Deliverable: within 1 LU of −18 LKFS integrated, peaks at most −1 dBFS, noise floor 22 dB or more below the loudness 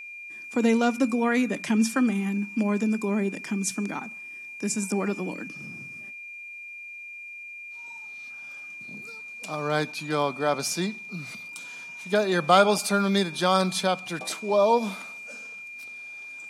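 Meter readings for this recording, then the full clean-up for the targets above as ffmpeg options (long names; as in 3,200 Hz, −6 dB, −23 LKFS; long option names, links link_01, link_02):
interfering tone 2,400 Hz; level of the tone −38 dBFS; integrated loudness −25.5 LKFS; sample peak −5.5 dBFS; target loudness −18.0 LKFS
→ -af "bandreject=frequency=2400:width=30"
-af "volume=7.5dB,alimiter=limit=-1dB:level=0:latency=1"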